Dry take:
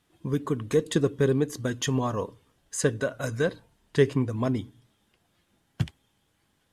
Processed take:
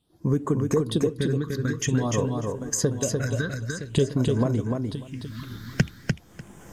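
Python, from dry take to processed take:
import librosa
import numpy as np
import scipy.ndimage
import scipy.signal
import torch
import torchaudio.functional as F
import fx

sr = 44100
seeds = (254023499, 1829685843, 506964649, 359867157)

p1 = fx.recorder_agc(x, sr, target_db=-13.0, rise_db_per_s=31.0, max_gain_db=30)
p2 = p1 + fx.echo_single(p1, sr, ms=967, db=-11.0, dry=0)
p3 = fx.spec_erase(p2, sr, start_s=4.96, length_s=0.47, low_hz=330.0, high_hz=940.0)
p4 = fx.phaser_stages(p3, sr, stages=6, low_hz=670.0, high_hz=4100.0, hz=0.5, feedback_pct=35)
p5 = fx.echo_feedback(p4, sr, ms=297, feedback_pct=16, wet_db=-4)
y = F.gain(torch.from_numpy(p5), -2.5).numpy()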